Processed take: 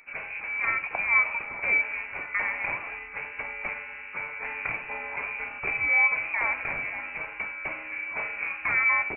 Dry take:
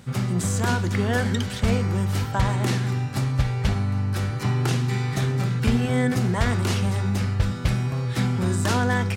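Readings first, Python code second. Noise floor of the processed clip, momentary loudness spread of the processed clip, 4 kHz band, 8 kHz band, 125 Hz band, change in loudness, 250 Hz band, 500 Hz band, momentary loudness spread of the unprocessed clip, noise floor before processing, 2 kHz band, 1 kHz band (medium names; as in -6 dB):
-41 dBFS, 13 LU, under -20 dB, under -40 dB, -33.5 dB, -3.5 dB, -26.0 dB, -13.0 dB, 3 LU, -31 dBFS, +7.5 dB, -4.0 dB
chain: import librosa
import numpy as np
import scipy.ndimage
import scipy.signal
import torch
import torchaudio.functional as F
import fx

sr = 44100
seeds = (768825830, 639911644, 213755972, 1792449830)

y = fx.dynamic_eq(x, sr, hz=2000.0, q=2.9, threshold_db=-47.0, ratio=4.0, max_db=6)
y = fx.highpass_res(y, sr, hz=500.0, q=4.9)
y = fx.freq_invert(y, sr, carrier_hz=2800)
y = y * 10.0 ** (-6.0 / 20.0)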